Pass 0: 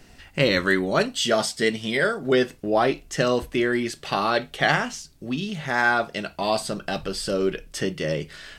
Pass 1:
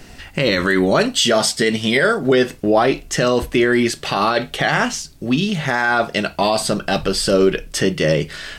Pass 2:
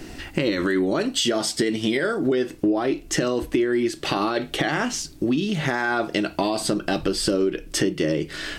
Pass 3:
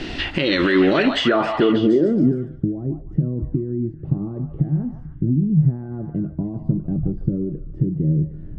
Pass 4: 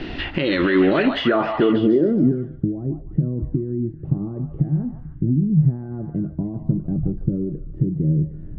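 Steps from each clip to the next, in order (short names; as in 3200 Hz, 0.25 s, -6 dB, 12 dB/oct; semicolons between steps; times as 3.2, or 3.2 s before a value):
maximiser +14.5 dB; gain -4.5 dB
bell 320 Hz +13.5 dB 0.44 oct; compressor 5:1, threshold -20 dBFS, peak gain reduction 15 dB
low-pass sweep 3500 Hz -> 140 Hz, 0.91–2.41; limiter -16 dBFS, peak gain reduction 10 dB; delay with a stepping band-pass 0.148 s, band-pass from 910 Hz, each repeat 0.7 oct, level -3 dB; gain +8 dB
air absorption 220 m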